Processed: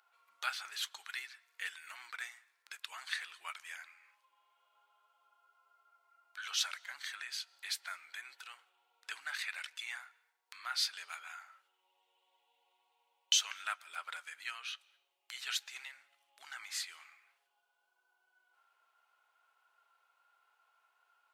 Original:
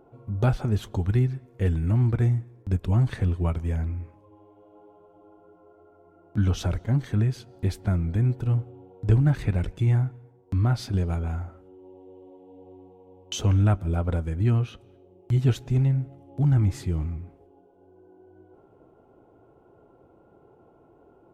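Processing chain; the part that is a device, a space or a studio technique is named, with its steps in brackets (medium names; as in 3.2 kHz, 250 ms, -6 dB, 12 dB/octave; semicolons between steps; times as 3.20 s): headphones lying on a table (high-pass 1.5 kHz 24 dB/octave; peaking EQ 4.3 kHz +5 dB 0.44 oct); trim +3.5 dB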